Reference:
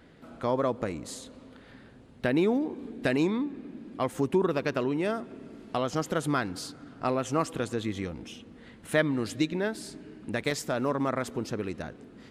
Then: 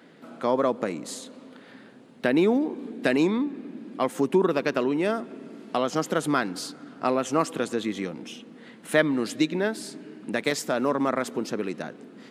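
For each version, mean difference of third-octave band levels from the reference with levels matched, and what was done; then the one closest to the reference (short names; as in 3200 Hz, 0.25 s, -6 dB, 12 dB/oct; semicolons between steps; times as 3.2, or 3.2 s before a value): 1.5 dB: HPF 170 Hz 24 dB/oct; gain +4 dB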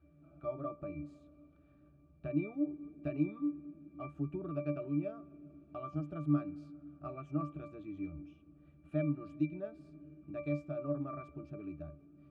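11.0 dB: octave resonator D, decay 0.23 s; gain +2 dB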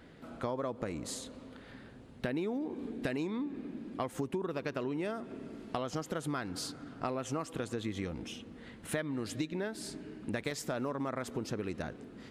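4.0 dB: compressor, threshold -32 dBFS, peak gain reduction 13 dB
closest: first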